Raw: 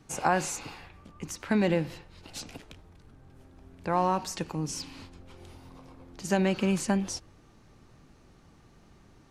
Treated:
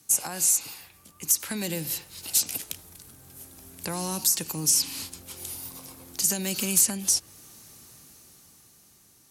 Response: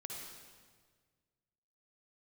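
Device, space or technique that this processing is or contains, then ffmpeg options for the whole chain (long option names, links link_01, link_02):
FM broadcast chain: -filter_complex "[0:a]highpass=71,dynaudnorm=framelen=230:gausssize=13:maxgain=11.5dB,acrossover=split=360|3600[link_01][link_02][link_03];[link_01]acompressor=threshold=-20dB:ratio=4[link_04];[link_02]acompressor=threshold=-28dB:ratio=4[link_05];[link_03]acompressor=threshold=-33dB:ratio=4[link_06];[link_04][link_05][link_06]amix=inputs=3:normalize=0,aemphasis=mode=production:type=75fm,alimiter=limit=-13dB:level=0:latency=1:release=442,asoftclip=type=hard:threshold=-16dB,lowpass=frequency=15000:width=0.5412,lowpass=frequency=15000:width=1.3066,aemphasis=mode=production:type=75fm,volume=-7dB"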